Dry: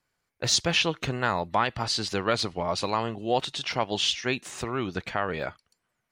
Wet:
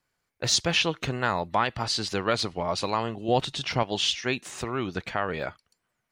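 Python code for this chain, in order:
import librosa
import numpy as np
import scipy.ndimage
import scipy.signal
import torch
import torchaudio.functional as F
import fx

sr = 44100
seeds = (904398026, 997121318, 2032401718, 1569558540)

y = fx.low_shelf(x, sr, hz=210.0, db=10.5, at=(3.28, 3.83))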